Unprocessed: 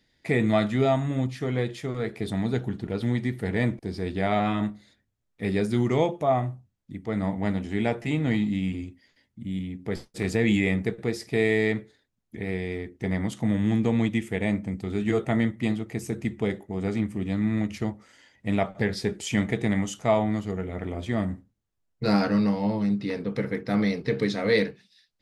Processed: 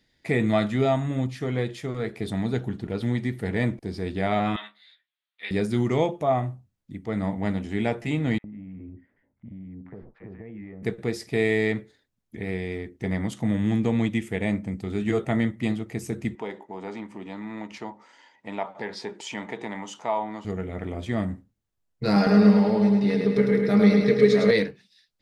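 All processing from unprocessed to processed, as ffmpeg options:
-filter_complex "[0:a]asettb=1/sr,asplit=3[s0][s1][s2];[s0]atrim=end=4.564[s3];[s1]atrim=start=4.56:end=5.51,asetpts=PTS-STARTPTS,afade=t=in:d=0.004:c=qsin,afade=t=out:st=0.946:d=0.004:c=qsin,highpass=1400,highshelf=f=4800:t=q:w=3:g=-10.5,asplit=2[s4][s5];[s5]adelay=14,volume=0.75[s6];[s4][s6]amix=inputs=2:normalize=0,atrim=end_sample=41895[s7];[s2]atrim=start=5.506[s8];[s3][s7]acrossfade=d=0.004:c1=hsin:c2=qsin[s9];[s9][s8]acrossfade=d=0.004:c1=qsin:c2=hsin,asettb=1/sr,asplit=3[s10][s11][s12];[s10]atrim=end=8.384[s13];[s11]atrim=start=8.38:end=10.83,asetpts=PTS-STARTPTS,afade=t=in:d=0.004:c=qsin,afade=t=out:st=2.446:d=0.004:c=qsin,lowpass=f=1700:w=0.5412,lowpass=f=1700:w=1.3066,acompressor=threshold=0.0141:ratio=8:attack=3.2:release=140:knee=1:detection=peak,acrossover=split=1000[s14][s15];[s14]adelay=60[s16];[s16][s15]amix=inputs=2:normalize=0,atrim=end_sample=108045[s17];[s12]atrim=start=10.826[s18];[s13][s17]acrossfade=d=0.004:c1=hsin:c2=qsin[s19];[s19][s18]acrossfade=d=0.004:c1=qsin:c2=hsin,asettb=1/sr,asplit=3[s20][s21][s22];[s20]atrim=end=16.354[s23];[s21]atrim=start=16.35:end=20.45,asetpts=PTS-STARTPTS,afade=t=in:d=0.004:c=qsin,afade=t=out:st=4.096:d=0.004:c=qsin,equalizer=f=930:t=o:w=0.38:g=14.5,acompressor=threshold=0.02:ratio=1.5:attack=3.2:release=140:knee=1:detection=peak,highpass=290,lowpass=6100[s24];[s22]atrim=start=20.446[s25];[s23][s24]acrossfade=d=0.004:c1=hsin:c2=qsin[s26];[s26][s25]acrossfade=d=0.004:c1=qsin:c2=hsin,asettb=1/sr,asplit=3[s27][s28][s29];[s27]atrim=end=22.164[s30];[s28]atrim=start=22.16:end=24.51,asetpts=PTS-STARTPTS,afade=t=in:d=0.004:c=qsin,afade=t=out:st=2.346:d=0.004:c=qsin,equalizer=f=420:w=6.3:g=8,aecho=1:1:4.9:0.71,atrim=end_sample=103635,aecho=1:1:105|210|315|420|525|630|735|840:0.631|0.36|0.205|0.117|0.0666|0.038|0.0216|0.0123,atrim=end_sample=103635[s31];[s29]atrim=start=24.506[s32];[s30][s31]acrossfade=d=0.004:c1=hsin:c2=qsin[s33];[s33][s32]acrossfade=d=0.004:c1=qsin:c2=hsin"

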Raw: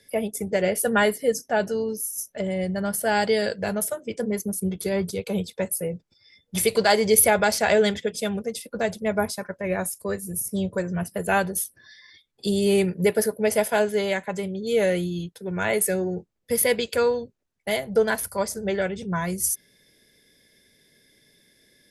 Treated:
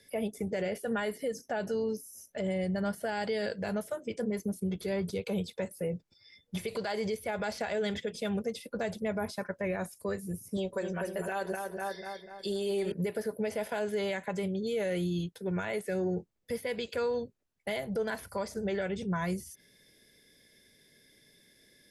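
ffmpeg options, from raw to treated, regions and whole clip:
-filter_complex "[0:a]asettb=1/sr,asplit=3[s0][s1][s2];[s0]atrim=end=10.574[s3];[s1]atrim=start=10.57:end=12.92,asetpts=PTS-STARTPTS,afade=t=in:d=0.004:c=qsin,afade=t=out:st=2.346:d=0.004:c=qsin,equalizer=f=160:w=1.1:g=-14.5,aecho=1:1:5.3:0.85,atrim=end_sample=103635,asplit=2[s4][s5];[s5]adelay=246,lowpass=f=2300:p=1,volume=0.447,asplit=2[s6][s7];[s7]adelay=246,lowpass=f=2300:p=1,volume=0.53,asplit=2[s8][s9];[s9]adelay=246,lowpass=f=2300:p=1,volume=0.53,asplit=2[s10][s11];[s11]adelay=246,lowpass=f=2300:p=1,volume=0.53,asplit=2[s12][s13];[s13]adelay=246,lowpass=f=2300:p=1,volume=0.53,asplit=2[s14][s15];[s15]adelay=246,lowpass=f=2300:p=1,volume=0.53[s16];[s4][s6][s8][s10][s12][s14][s16]amix=inputs=7:normalize=0,atrim=end_sample=103635[s17];[s2]atrim=start=12.916[s18];[s3][s17]acrossfade=d=0.004:c1=hsin:c2=qsin[s19];[s19][s18]acrossfade=d=0.004:c1=qsin:c2=hsin,acompressor=threshold=0.0891:ratio=6,alimiter=limit=0.0794:level=0:latency=1:release=60,acrossover=split=4300[s20][s21];[s21]acompressor=threshold=0.00447:ratio=4:attack=1:release=60[s22];[s20][s22]amix=inputs=2:normalize=0,volume=0.75"

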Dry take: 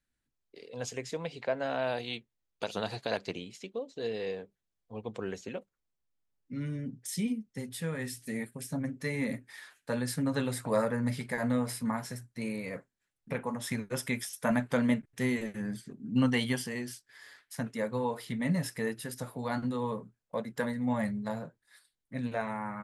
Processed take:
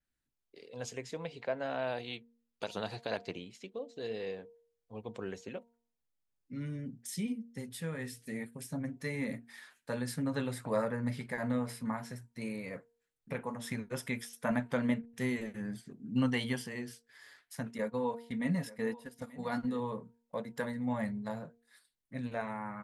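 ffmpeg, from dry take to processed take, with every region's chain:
-filter_complex "[0:a]asettb=1/sr,asplit=3[s0][s1][s2];[s0]atrim=end=17.784[s3];[s1]atrim=start=17.78:end=19.8,asetpts=PTS-STARTPTS,afade=t=in:d=0.004:c=qsin,afade=t=out:st=2.016:d=0.004:c=qsin,agate=range=0.251:threshold=0.0126:ratio=16:release=100:detection=peak,aecho=1:1:4.2:0.4,atrim=end_sample=89082,aecho=1:1:885:0.112,atrim=end_sample=89082[s4];[s2]atrim=start=19.796[s5];[s3][s4]acrossfade=d=0.004:c1=hsin:c2=qsin[s6];[s6][s5]acrossfade=d=0.004:c1=qsin:c2=hsin,bandreject=f=233.9:t=h:w=4,bandreject=f=467.8:t=h:w=4,bandreject=f=701.7:t=h:w=4,bandreject=f=935.6:t=h:w=4,adynamicequalizer=threshold=0.00224:dfrequency=4300:dqfactor=0.7:tfrequency=4300:tqfactor=0.7:attack=5:release=100:ratio=0.375:range=3:mode=cutabove:tftype=highshelf,volume=0.668"

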